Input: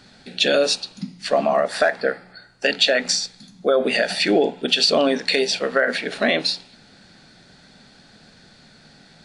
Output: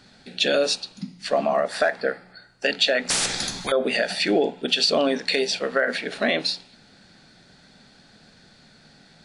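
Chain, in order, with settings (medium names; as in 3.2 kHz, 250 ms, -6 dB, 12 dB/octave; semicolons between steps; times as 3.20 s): 3.10–3.72 s: spectrum-flattening compressor 10:1; trim -3 dB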